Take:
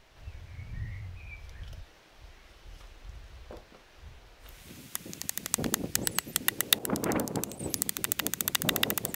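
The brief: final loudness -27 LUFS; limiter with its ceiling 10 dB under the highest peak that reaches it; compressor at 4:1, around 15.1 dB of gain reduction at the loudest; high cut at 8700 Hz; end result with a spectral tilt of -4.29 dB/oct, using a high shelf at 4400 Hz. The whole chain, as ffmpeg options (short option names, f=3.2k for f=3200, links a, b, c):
-af "lowpass=8.7k,highshelf=f=4.4k:g=3,acompressor=threshold=-39dB:ratio=4,volume=20dB,alimiter=limit=-4.5dB:level=0:latency=1"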